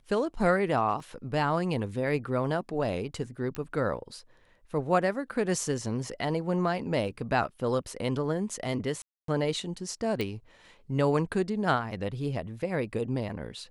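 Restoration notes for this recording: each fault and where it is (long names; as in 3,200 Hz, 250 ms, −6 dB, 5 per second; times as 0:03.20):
0:01.00: drop-out 3.2 ms
0:03.55: click −20 dBFS
0:09.02–0:09.28: drop-out 263 ms
0:10.21: click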